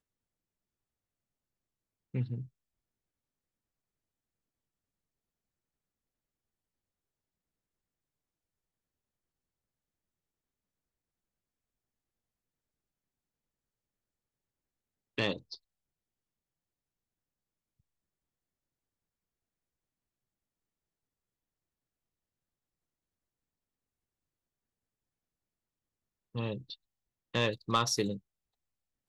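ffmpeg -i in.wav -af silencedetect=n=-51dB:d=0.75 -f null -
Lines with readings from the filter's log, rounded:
silence_start: 0.00
silence_end: 2.14 | silence_duration: 2.14
silence_start: 2.47
silence_end: 15.18 | silence_duration: 12.71
silence_start: 15.57
silence_end: 26.35 | silence_duration: 10.78
silence_start: 28.18
silence_end: 29.09 | silence_duration: 0.90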